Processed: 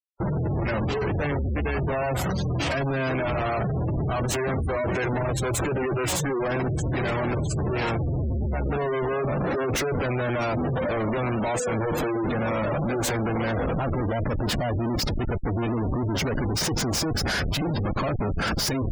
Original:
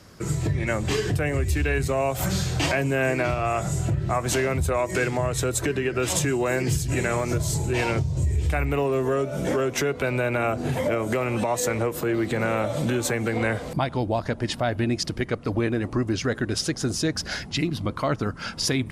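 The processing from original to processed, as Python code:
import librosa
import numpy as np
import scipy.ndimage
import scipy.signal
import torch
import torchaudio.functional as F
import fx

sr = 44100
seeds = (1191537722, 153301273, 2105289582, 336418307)

y = fx.mod_noise(x, sr, seeds[0], snr_db=31, at=(13.48, 13.98))
y = fx.schmitt(y, sr, flips_db=-36.5)
y = fx.spec_gate(y, sr, threshold_db=-20, keep='strong')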